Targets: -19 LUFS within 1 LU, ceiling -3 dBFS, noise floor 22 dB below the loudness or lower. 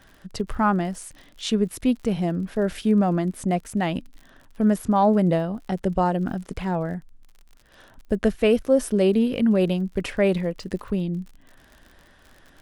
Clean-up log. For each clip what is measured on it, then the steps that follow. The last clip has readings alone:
tick rate 48 per s; loudness -23.5 LUFS; peak level -8.5 dBFS; loudness target -19.0 LUFS
-> de-click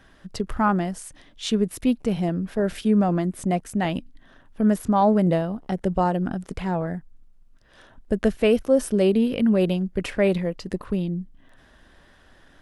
tick rate 0.079 per s; loudness -23.5 LUFS; peak level -8.5 dBFS; loudness target -19.0 LUFS
-> trim +4.5 dB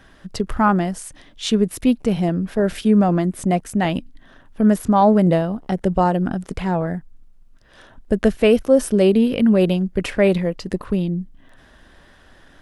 loudness -19.0 LUFS; peak level -4.0 dBFS; noise floor -50 dBFS

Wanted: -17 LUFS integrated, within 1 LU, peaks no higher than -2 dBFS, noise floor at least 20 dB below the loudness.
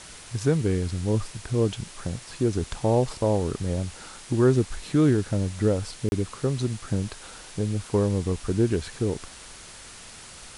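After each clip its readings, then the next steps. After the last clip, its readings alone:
dropouts 1; longest dropout 31 ms; noise floor -45 dBFS; noise floor target -46 dBFS; loudness -26.0 LUFS; peak level -9.5 dBFS; loudness target -17.0 LUFS
-> interpolate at 6.09 s, 31 ms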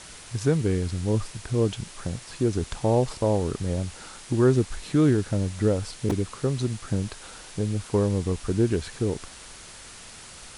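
dropouts 0; noise floor -45 dBFS; noise floor target -46 dBFS
-> noise print and reduce 6 dB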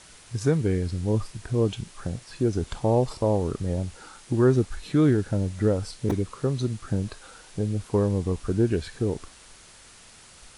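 noise floor -51 dBFS; loudness -26.5 LUFS; peak level -9.5 dBFS; loudness target -17.0 LUFS
-> trim +9.5 dB; peak limiter -2 dBFS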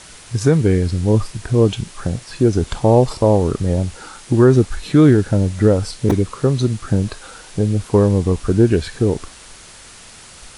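loudness -17.0 LUFS; peak level -2.0 dBFS; noise floor -41 dBFS

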